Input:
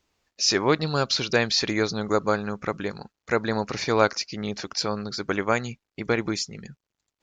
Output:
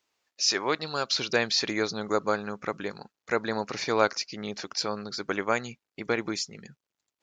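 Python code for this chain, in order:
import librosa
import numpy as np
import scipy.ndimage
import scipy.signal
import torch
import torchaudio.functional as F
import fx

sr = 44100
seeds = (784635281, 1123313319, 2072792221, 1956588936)

y = fx.highpass(x, sr, hz=fx.steps((0.0, 600.0), (1.15, 230.0)), slope=6)
y = y * 10.0 ** (-2.5 / 20.0)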